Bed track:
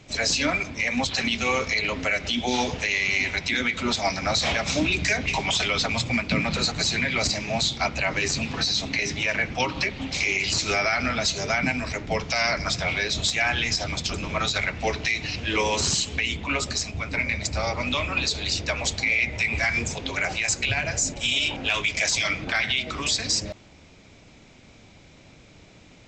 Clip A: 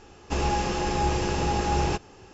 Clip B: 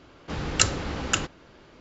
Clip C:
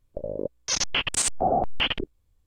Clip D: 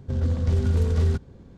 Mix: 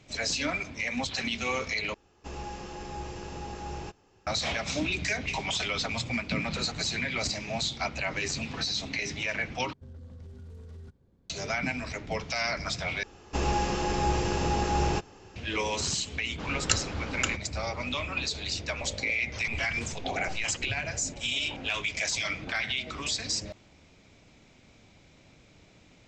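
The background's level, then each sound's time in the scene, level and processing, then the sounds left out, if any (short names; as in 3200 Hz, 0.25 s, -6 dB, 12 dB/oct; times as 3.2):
bed track -6.5 dB
1.94 replace with A -13.5 dB
9.73 replace with D -18 dB + limiter -21.5 dBFS
13.03 replace with A -2 dB
16.1 add B -5 dB
18.64 add C -11.5 dB + air absorption 200 m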